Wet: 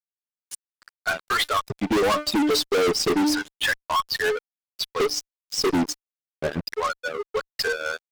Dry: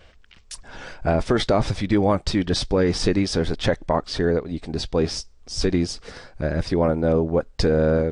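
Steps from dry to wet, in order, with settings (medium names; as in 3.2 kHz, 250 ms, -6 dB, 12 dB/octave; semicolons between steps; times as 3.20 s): expander on every frequency bin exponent 2; LFO high-pass square 0.3 Hz 290–1500 Hz; reverb removal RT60 1.4 s; de-hum 299.7 Hz, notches 17; small resonant body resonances 430/1100 Hz, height 17 dB, ringing for 85 ms; fuzz box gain 31 dB, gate -40 dBFS; trim -5.5 dB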